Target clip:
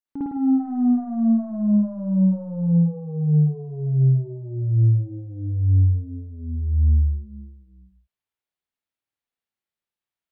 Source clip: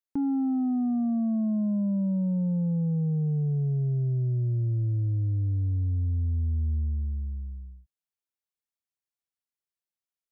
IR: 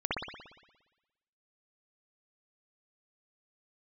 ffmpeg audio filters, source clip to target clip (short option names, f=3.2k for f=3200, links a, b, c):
-filter_complex "[0:a]asettb=1/sr,asplit=3[a][b][c];[a]atrim=end=0.554[d];[b]atrim=start=0.55:end=2.73,asetpts=PTS-STARTPTS,afade=t=in:d=0.004:c=qsin,afade=t=out:st=2.176:d=0.004:c=qsin,aeval=exprs='0.0668*(cos(1*acos(clip(val(0)/0.0668,-1,1)))-cos(1*PI/2))+0.000596*(cos(4*acos(clip(val(0)/0.0668,-1,1)))-cos(4*PI/2))':c=same[e];[c]atrim=start=2.726[f];[d][e]acrossfade=d=0.004:c1=hsin:c2=qsin[g];[g][f]acrossfade=d=0.004:c1=qsin:c2=hsin[h];[1:a]atrim=start_sample=2205,afade=t=out:st=0.28:d=0.01,atrim=end_sample=12789,asetrate=48510,aresample=44100[i];[h][i]afir=irnorm=-1:irlink=0,volume=-2dB"